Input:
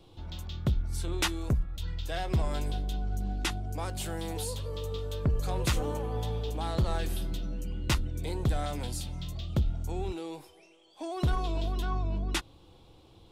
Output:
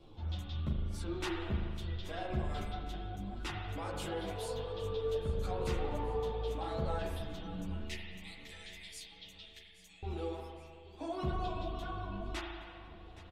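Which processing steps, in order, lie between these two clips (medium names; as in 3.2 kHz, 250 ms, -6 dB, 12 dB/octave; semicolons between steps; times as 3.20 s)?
7.83–10.03 s: Chebyshev high-pass 1.8 kHz, order 6; reverb removal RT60 1 s; low-pass 3.2 kHz 6 dB/octave; peak limiter -30.5 dBFS, peak gain reduction 10 dB; feedback delay 820 ms, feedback 50%, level -17 dB; spring tank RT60 2 s, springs 38 ms, chirp 60 ms, DRR -0.5 dB; three-phase chorus; trim +2 dB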